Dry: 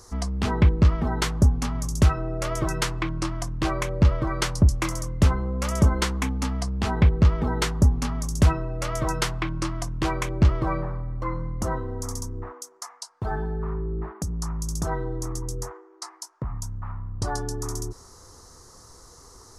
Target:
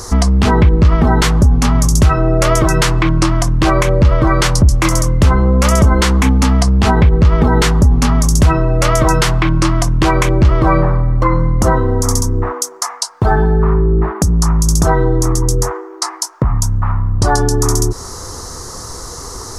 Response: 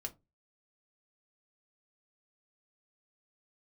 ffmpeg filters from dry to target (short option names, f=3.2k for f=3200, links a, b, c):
-filter_complex "[0:a]asplit=2[a][b];[b]acompressor=threshold=-34dB:ratio=6,volume=2.5dB[c];[a][c]amix=inputs=2:normalize=0,alimiter=level_in=14.5dB:limit=-1dB:release=50:level=0:latency=1,volume=-1dB"